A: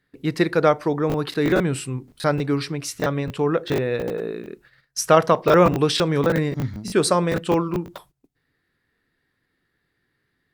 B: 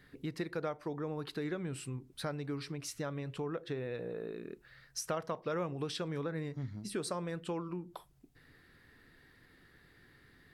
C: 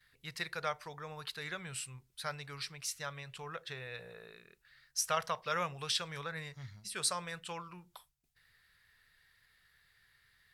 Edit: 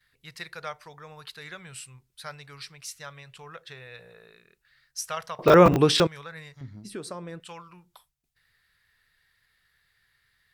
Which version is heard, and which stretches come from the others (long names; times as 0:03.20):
C
0:05.39–0:06.07: punch in from A
0:06.61–0:07.40: punch in from B